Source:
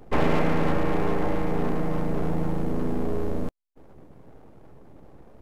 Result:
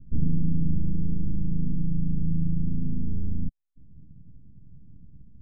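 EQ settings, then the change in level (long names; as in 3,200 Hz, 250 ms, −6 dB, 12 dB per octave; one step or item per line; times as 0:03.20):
inverse Chebyshev low-pass filter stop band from 880 Hz, stop band 70 dB
+3.5 dB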